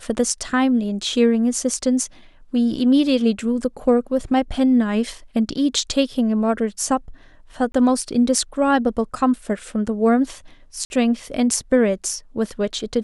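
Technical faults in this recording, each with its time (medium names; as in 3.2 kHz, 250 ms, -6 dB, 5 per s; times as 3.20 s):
7.72–7.74 s: dropout 22 ms
10.85–10.90 s: dropout 51 ms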